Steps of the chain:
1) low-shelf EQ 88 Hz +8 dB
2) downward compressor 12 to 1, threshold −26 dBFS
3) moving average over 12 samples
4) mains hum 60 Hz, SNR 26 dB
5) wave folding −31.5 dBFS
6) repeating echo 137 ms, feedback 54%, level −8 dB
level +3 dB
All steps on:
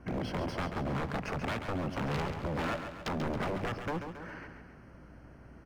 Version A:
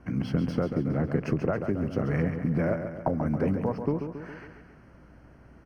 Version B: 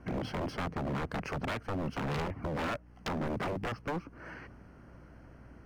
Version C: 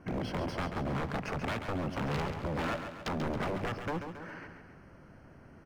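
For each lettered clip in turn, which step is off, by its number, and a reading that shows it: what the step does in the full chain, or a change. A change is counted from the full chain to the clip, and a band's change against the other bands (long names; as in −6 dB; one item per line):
5, change in crest factor +4.5 dB
6, echo-to-direct ratio −6.5 dB to none audible
4, change in momentary loudness spread +1 LU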